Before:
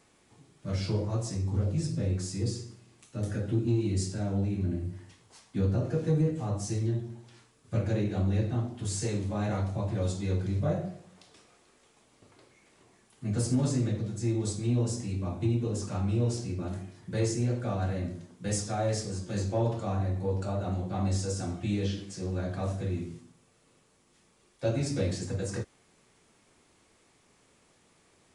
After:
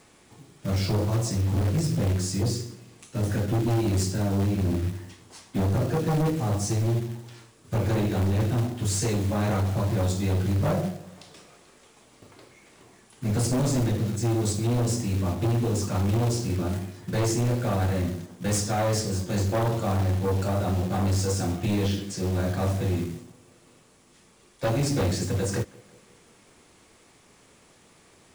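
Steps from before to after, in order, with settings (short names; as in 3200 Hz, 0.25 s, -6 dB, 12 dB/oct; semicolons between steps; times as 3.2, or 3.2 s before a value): sine folder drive 7 dB, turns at -16.5 dBFS; tape echo 0.178 s, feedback 66%, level -22 dB; short-mantissa float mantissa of 2-bit; gain -3 dB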